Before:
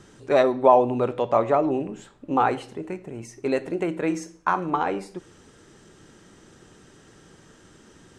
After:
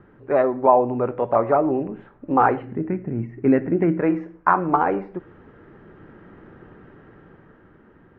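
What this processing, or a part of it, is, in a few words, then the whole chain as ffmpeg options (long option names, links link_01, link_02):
action camera in a waterproof case: -filter_complex "[0:a]asplit=3[link_01][link_02][link_03];[link_01]afade=type=out:start_time=2.6:duration=0.02[link_04];[link_02]equalizer=frequency=125:width_type=o:width=1:gain=7,equalizer=frequency=250:width_type=o:width=1:gain=7,equalizer=frequency=500:width_type=o:width=1:gain=-4,equalizer=frequency=1000:width_type=o:width=1:gain=-6,equalizer=frequency=2000:width_type=o:width=1:gain=4,equalizer=frequency=4000:width_type=o:width=1:gain=-6,equalizer=frequency=8000:width_type=o:width=1:gain=-11,afade=type=in:start_time=2.6:duration=0.02,afade=type=out:start_time=3.99:duration=0.02[link_05];[link_03]afade=type=in:start_time=3.99:duration=0.02[link_06];[link_04][link_05][link_06]amix=inputs=3:normalize=0,lowpass=frequency=1900:width=0.5412,lowpass=frequency=1900:width=1.3066,dynaudnorm=framelen=230:gausssize=11:maxgain=7dB" -ar 44100 -c:a aac -b:a 48k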